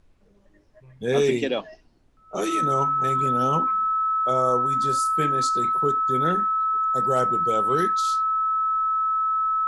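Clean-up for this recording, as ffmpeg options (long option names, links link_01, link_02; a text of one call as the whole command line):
ffmpeg -i in.wav -af "bandreject=frequency=1300:width=30,agate=range=-21dB:threshold=-48dB" out.wav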